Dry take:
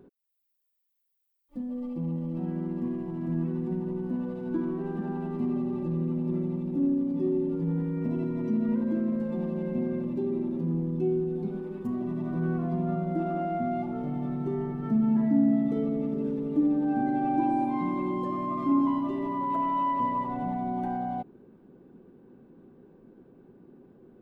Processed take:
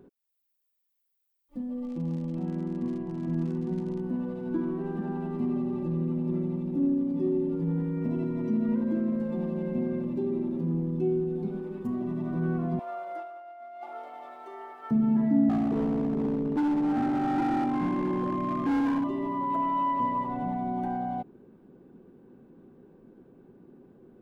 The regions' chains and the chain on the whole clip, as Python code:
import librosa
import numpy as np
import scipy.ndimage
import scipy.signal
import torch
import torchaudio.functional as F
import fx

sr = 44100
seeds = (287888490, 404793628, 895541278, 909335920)

y = fx.dmg_crackle(x, sr, seeds[0], per_s=100.0, level_db=-38.0, at=(1.84, 3.99), fade=0.02)
y = fx.air_absorb(y, sr, metres=74.0, at=(1.84, 3.99), fade=0.02)
y = fx.chain(y, sr, fx.highpass(hz=630.0, slope=24),
    fx.over_compress(threshold_db=-38.0, ratio=-0.5), at=(12.79, 14.91))
y = fx.chain(y, sr, fx.tilt_eq(slope=-1.5),
    fx.clip_hard(threshold_db=-23.5), at=(15.49, 19.04))